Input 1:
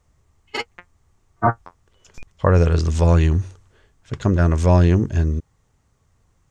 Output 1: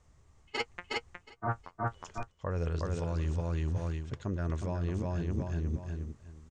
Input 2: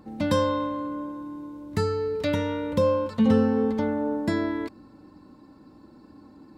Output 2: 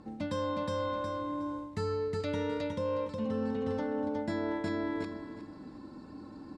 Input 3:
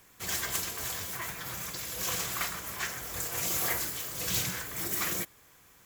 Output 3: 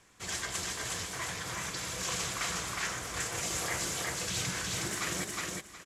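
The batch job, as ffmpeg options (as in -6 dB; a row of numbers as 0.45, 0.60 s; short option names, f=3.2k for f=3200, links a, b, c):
-af "aecho=1:1:364|728|1092:0.631|0.126|0.0252,dynaudnorm=f=840:g=3:m=3dB,lowpass=f=9.3k:w=0.5412,lowpass=f=9.3k:w=1.3066,areverse,acompressor=threshold=-28dB:ratio=16,areverse,volume=-1.5dB"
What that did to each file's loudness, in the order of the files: -16.5, -9.0, -2.0 LU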